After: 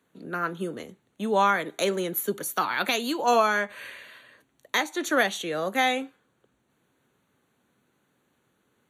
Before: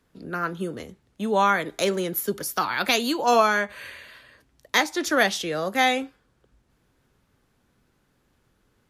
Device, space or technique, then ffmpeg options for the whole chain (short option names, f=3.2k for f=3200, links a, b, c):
PA system with an anti-feedback notch: -af "highpass=160,asuperstop=centerf=5100:order=4:qfactor=3.6,alimiter=limit=-10dB:level=0:latency=1:release=413,volume=-1dB"